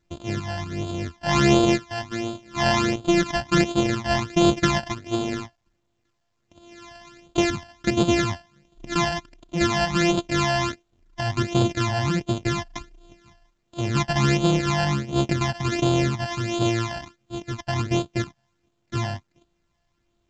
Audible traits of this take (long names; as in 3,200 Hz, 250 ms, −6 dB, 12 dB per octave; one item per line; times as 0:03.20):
a buzz of ramps at a fixed pitch in blocks of 128 samples
phaser sweep stages 12, 1.4 Hz, lowest notch 380–1,900 Hz
mu-law